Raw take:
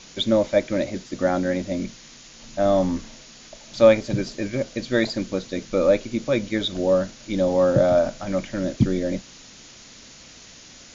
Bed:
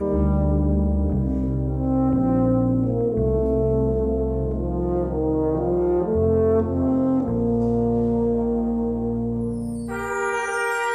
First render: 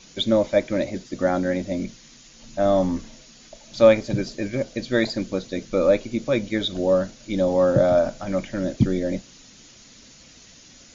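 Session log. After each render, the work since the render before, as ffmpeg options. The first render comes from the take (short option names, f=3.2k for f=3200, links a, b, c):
-af "afftdn=nr=6:nf=-46"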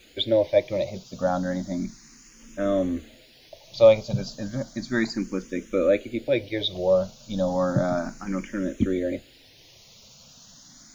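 -filter_complex "[0:a]acrusher=bits=9:mix=0:aa=0.000001,asplit=2[a][b];[b]afreqshift=0.33[c];[a][c]amix=inputs=2:normalize=1"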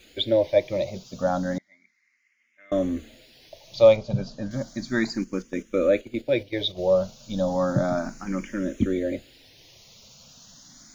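-filter_complex "[0:a]asettb=1/sr,asplit=3[a][b][c];[a]atrim=end=1.584[d];[b]atrim=start=1.58:end=2.72,asetpts=PTS-STARTPTS,afade=t=in:d=0.004:c=qsin,afade=t=out:st=1.136:d=0.004:c=qsin,bandpass=f=2.1k:t=q:w=13[e];[c]atrim=start=2.716[f];[d][e]acrossfade=d=0.004:c1=hsin:c2=qsin[g];[g][f]acrossfade=d=0.004:c1=qsin:c2=hsin,asettb=1/sr,asplit=3[h][i][j];[h]atrim=end=3.964[k];[i]atrim=start=3.96:end=4.51,asetpts=PTS-STARTPTS,afade=t=in:d=0.004:c=qsin,afade=t=out:st=0.546:d=0.004:c=qsin,aemphasis=mode=reproduction:type=75fm[l];[j]atrim=start=4.506[m];[k][l]acrossfade=d=0.004:c1=hsin:c2=qsin[n];[n][m]acrossfade=d=0.004:c1=qsin:c2=hsin,asettb=1/sr,asplit=3[o][p][q];[o]atrim=end=5.244[r];[p]atrim=start=5.24:end=6.94,asetpts=PTS-STARTPTS,afade=t=in:d=0.004:c=qsin,afade=t=out:st=1.696:d=0.004:c=qsin,agate=range=-8dB:threshold=-35dB:ratio=16:release=100:detection=peak[s];[q]atrim=start=6.936[t];[r][s]acrossfade=d=0.004:c1=hsin:c2=qsin[u];[u][t]acrossfade=d=0.004:c1=qsin:c2=hsin"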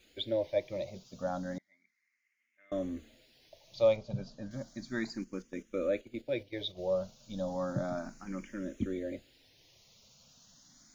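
-af "volume=-11dB"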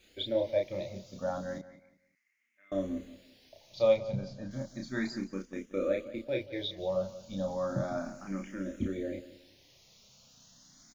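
-filter_complex "[0:a]asplit=2[a][b];[b]adelay=31,volume=-3.5dB[c];[a][c]amix=inputs=2:normalize=0,asplit=2[d][e];[e]adelay=179,lowpass=f=4k:p=1,volume=-15.5dB,asplit=2[f][g];[g]adelay=179,lowpass=f=4k:p=1,volume=0.28,asplit=2[h][i];[i]adelay=179,lowpass=f=4k:p=1,volume=0.28[j];[d][f][h][j]amix=inputs=4:normalize=0"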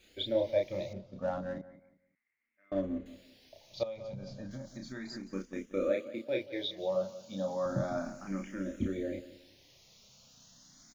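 -filter_complex "[0:a]asettb=1/sr,asplit=3[a][b][c];[a]atrim=end=0.934[d];[b]atrim=start=0.93:end=3.06,asetpts=PTS-STARTPTS,afade=t=in:d=0.004:c=qsin,afade=t=out:st=2.126:d=0.004:c=qsin,adynamicsmooth=sensitivity=6:basefreq=1.8k[e];[c]atrim=start=3.056[f];[d][e]acrossfade=d=0.004:c1=hsin:c2=qsin[g];[g][f]acrossfade=d=0.004:c1=qsin:c2=hsin,asettb=1/sr,asplit=3[h][i][j];[h]atrim=end=3.834[k];[i]atrim=start=3.83:end=5.27,asetpts=PTS-STARTPTS,afade=t=in:d=0.004:c=qsin,afade=t=out:st=1.436:d=0.004:c=qsin,acompressor=threshold=-38dB:ratio=8:attack=3.2:release=140:knee=1:detection=peak[l];[j]atrim=start=5.266[m];[k][l]acrossfade=d=0.004:c1=hsin:c2=qsin[n];[n][m]acrossfade=d=0.004:c1=qsin:c2=hsin,asettb=1/sr,asplit=3[o][p][q];[o]atrim=end=5.904[r];[p]atrim=start=5.9:end=7.66,asetpts=PTS-STARTPTS,afade=t=in:d=0.004:c=qsin,afade=t=out:st=1.756:d=0.004:c=qsin,highpass=180[s];[q]atrim=start=7.656[t];[r][s]acrossfade=d=0.004:c1=hsin:c2=qsin[u];[u][t]acrossfade=d=0.004:c1=qsin:c2=hsin"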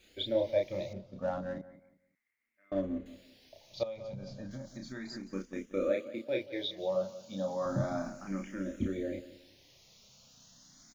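-filter_complex "[0:a]asettb=1/sr,asplit=3[a][b][c];[a]atrim=end=7.594[d];[b]atrim=start=7.59:end=8.09,asetpts=PTS-STARTPTS,afade=t=in:d=0.004:c=qsin,afade=t=out:st=0.496:d=0.004:c=qsin,asplit=2[e][f];[f]adelay=30,volume=-6dB[g];[e][g]amix=inputs=2:normalize=0,atrim=end_sample=22050[h];[c]atrim=start=8.086[i];[d][h]acrossfade=d=0.004:c1=hsin:c2=qsin[j];[j][i]acrossfade=d=0.004:c1=qsin:c2=hsin"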